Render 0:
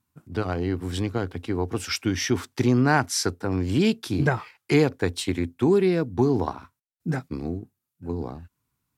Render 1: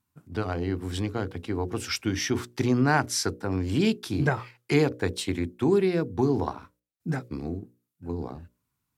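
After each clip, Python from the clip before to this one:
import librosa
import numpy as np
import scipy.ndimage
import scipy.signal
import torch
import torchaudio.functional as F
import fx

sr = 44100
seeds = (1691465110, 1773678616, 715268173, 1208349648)

y = fx.hum_notches(x, sr, base_hz=60, count=10)
y = F.gain(torch.from_numpy(y), -2.0).numpy()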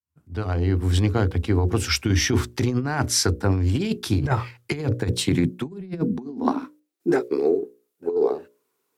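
y = fx.fade_in_head(x, sr, length_s=1.0)
y = fx.filter_sweep_highpass(y, sr, from_hz=71.0, to_hz=420.0, start_s=4.23, end_s=7.38, q=7.6)
y = fx.over_compress(y, sr, threshold_db=-24.0, ratio=-0.5)
y = F.gain(torch.from_numpy(y), 3.5).numpy()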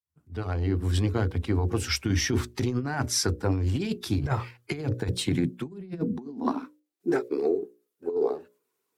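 y = fx.spec_quant(x, sr, step_db=15)
y = F.gain(torch.from_numpy(y), -4.5).numpy()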